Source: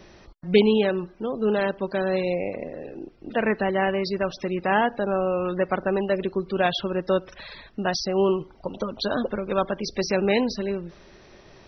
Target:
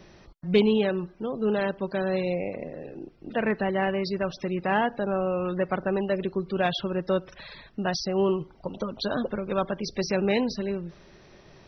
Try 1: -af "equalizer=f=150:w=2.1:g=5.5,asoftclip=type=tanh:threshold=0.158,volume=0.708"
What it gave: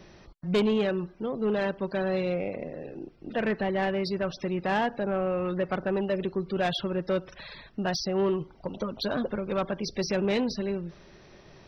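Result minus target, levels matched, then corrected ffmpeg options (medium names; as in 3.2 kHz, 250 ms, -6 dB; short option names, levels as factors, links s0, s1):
saturation: distortion +16 dB
-af "equalizer=f=150:w=2.1:g=5.5,asoftclip=type=tanh:threshold=0.562,volume=0.708"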